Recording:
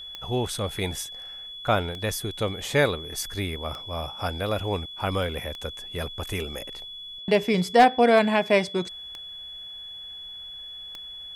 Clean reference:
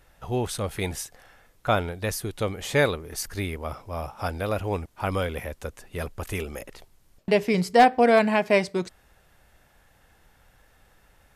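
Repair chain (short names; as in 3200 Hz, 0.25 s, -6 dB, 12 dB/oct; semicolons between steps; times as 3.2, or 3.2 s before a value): de-click; notch 3400 Hz, Q 30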